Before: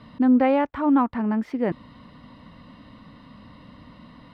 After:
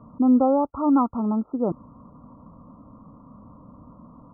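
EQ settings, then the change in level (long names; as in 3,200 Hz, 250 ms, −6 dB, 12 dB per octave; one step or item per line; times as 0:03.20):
linear-phase brick-wall low-pass 1,400 Hz
0.0 dB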